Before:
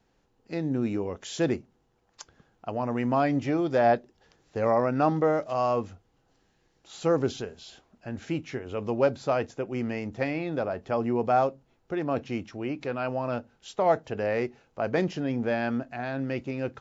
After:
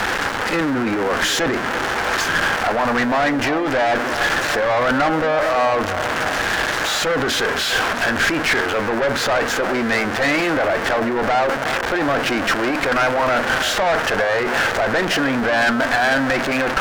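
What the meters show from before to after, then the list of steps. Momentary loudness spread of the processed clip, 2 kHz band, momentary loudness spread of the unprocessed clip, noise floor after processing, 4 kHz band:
3 LU, +21.0 dB, 11 LU, -23 dBFS, +22.5 dB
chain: jump at every zero crossing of -31 dBFS; overdrive pedal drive 22 dB, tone 2.2 kHz, clips at -10 dBFS; in parallel at -2 dB: compressor with a negative ratio -21 dBFS, ratio -0.5; on the sum: fifteen-band graphic EQ 160 Hz -6 dB, 400 Hz -4 dB, 1.6 kHz +9 dB; valve stage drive 14 dB, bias 0.7; on a send: band-passed feedback delay 325 ms, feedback 72%, band-pass 590 Hz, level -11 dB; on the sum: trim +2 dB

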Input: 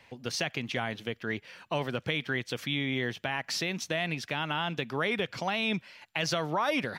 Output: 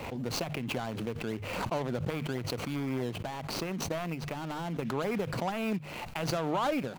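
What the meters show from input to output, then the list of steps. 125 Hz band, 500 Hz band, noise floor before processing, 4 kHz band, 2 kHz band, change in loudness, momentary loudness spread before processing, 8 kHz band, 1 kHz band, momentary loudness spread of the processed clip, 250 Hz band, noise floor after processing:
+1.5 dB, 0.0 dB, -63 dBFS, -7.0 dB, -8.5 dB, -2.5 dB, 6 LU, -2.0 dB, -1.0 dB, 5 LU, +1.0 dB, -42 dBFS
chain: median filter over 25 samples; hum notches 50/100/150 Hz; swell ahead of each attack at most 30 dB/s

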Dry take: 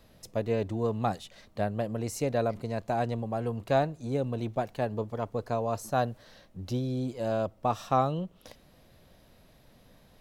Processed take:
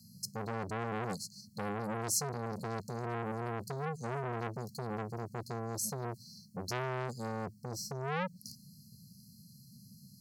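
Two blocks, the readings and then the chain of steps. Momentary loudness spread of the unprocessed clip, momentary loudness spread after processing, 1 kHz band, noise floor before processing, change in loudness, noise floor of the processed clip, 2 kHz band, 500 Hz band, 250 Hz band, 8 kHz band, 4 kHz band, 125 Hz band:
8 LU, 19 LU, -8.0 dB, -60 dBFS, -7.0 dB, -59 dBFS, -1.5 dB, -10.0 dB, -8.0 dB, +7.5 dB, 0.0 dB, -6.5 dB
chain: high-pass 120 Hz 24 dB/octave; peak limiter -21 dBFS, peak gain reduction 8 dB; brick-wall FIR band-stop 240–4100 Hz; transformer saturation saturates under 1.6 kHz; trim +8.5 dB

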